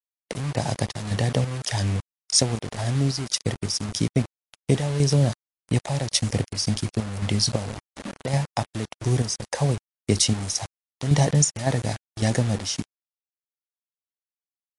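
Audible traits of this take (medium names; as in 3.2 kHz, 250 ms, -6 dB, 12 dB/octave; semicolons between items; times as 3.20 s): chopped level 1.8 Hz, depth 60%, duty 60%; a quantiser's noise floor 6-bit, dither none; MP3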